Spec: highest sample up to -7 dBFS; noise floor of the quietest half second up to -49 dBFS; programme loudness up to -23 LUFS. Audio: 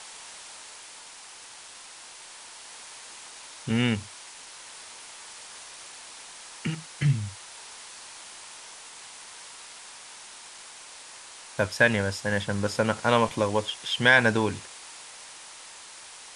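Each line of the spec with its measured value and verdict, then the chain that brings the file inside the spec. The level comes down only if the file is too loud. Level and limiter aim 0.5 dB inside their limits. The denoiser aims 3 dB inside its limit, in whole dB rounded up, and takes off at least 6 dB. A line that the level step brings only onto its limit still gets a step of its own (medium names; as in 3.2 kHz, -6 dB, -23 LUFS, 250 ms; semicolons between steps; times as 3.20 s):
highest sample -5.5 dBFS: fail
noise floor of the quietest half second -46 dBFS: fail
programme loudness -25.5 LUFS: pass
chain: noise reduction 6 dB, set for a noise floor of -46 dBFS; peak limiter -7.5 dBFS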